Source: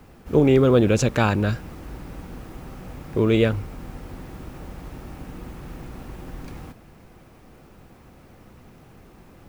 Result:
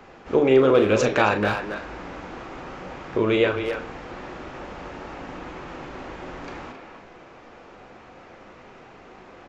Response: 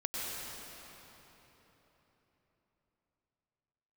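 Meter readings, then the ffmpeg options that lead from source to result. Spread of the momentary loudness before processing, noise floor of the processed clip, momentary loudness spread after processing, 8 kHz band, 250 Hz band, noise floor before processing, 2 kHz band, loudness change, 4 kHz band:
22 LU, -47 dBFS, 20 LU, no reading, -3.0 dB, -50 dBFS, +4.5 dB, -1.0 dB, +1.5 dB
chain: -filter_complex "[0:a]bass=f=250:g=-13,treble=f=4000:g=-9,flanger=delay=4.8:depth=6.6:regen=85:speed=0.71:shape=triangular,asplit=2[s0][s1];[s1]acompressor=threshold=0.02:ratio=6,volume=1.26[s2];[s0][s2]amix=inputs=2:normalize=0,aresample=16000,aresample=44100,lowshelf=f=460:g=-3,asplit=2[s3][s4];[s4]adelay=38,volume=0.355[s5];[s3][s5]amix=inputs=2:normalize=0,bandreject=f=150.9:t=h:w=4,bandreject=f=301.8:t=h:w=4,bandreject=f=452.7:t=h:w=4,bandreject=f=603.6:t=h:w=4,bandreject=f=754.5:t=h:w=4,bandreject=f=905.4:t=h:w=4,bandreject=f=1056.3:t=h:w=4,bandreject=f=1207.2:t=h:w=4,bandreject=f=1358.1:t=h:w=4,bandreject=f=1509:t=h:w=4,bandreject=f=1659.9:t=h:w=4,bandreject=f=1810.8:t=h:w=4,bandreject=f=1961.7:t=h:w=4,bandreject=f=2112.6:t=h:w=4,bandreject=f=2263.5:t=h:w=4,bandreject=f=2414.4:t=h:w=4,bandreject=f=2565.3:t=h:w=4,bandreject=f=2716.2:t=h:w=4,bandreject=f=2867.1:t=h:w=4,bandreject=f=3018:t=h:w=4,bandreject=f=3168.9:t=h:w=4,bandreject=f=3319.8:t=h:w=4,bandreject=f=3470.7:t=h:w=4,bandreject=f=3621.6:t=h:w=4,bandreject=f=3772.5:t=h:w=4,bandreject=f=3923.4:t=h:w=4,bandreject=f=4074.3:t=h:w=4,bandreject=f=4225.2:t=h:w=4,bandreject=f=4376.1:t=h:w=4,bandreject=f=4527:t=h:w=4,bandreject=f=4677.9:t=h:w=4,bandreject=f=4828.8:t=h:w=4,bandreject=f=4979.7:t=h:w=4,bandreject=f=5130.6:t=h:w=4,bandreject=f=5281.5:t=h:w=4,bandreject=f=5432.4:t=h:w=4,bandreject=f=5583.3:t=h:w=4,bandreject=f=5734.2:t=h:w=4,bandreject=f=5885.1:t=h:w=4,bandreject=f=6036:t=h:w=4,asplit=2[s6][s7];[s7]adelay=270,highpass=300,lowpass=3400,asoftclip=type=hard:threshold=0.1,volume=0.501[s8];[s6][s8]amix=inputs=2:normalize=0,volume=1.88"

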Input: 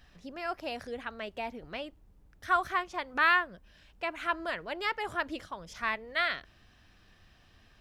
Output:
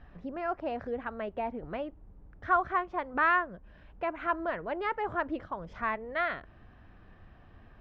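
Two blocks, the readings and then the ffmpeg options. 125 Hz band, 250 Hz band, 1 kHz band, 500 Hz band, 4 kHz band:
+5.5 dB, +4.5 dB, +1.5 dB, +4.0 dB, -12.5 dB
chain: -filter_complex "[0:a]lowpass=1300,asplit=2[s0][s1];[s1]acompressor=threshold=0.00501:ratio=6,volume=0.794[s2];[s0][s2]amix=inputs=2:normalize=0,volume=1.33"

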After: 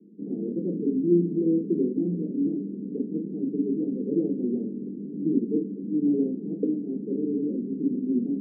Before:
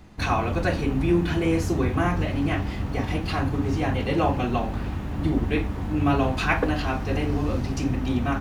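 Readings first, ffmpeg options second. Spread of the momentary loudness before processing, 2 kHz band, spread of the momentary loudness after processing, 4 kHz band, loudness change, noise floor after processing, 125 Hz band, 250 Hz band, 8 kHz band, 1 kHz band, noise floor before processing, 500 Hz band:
5 LU, under -40 dB, 7 LU, under -40 dB, -2.5 dB, -36 dBFS, -11.5 dB, +1.0 dB, under -35 dB, under -40 dB, -31 dBFS, -2.0 dB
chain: -af "asuperpass=centerf=280:order=12:qfactor=1,volume=1.19"

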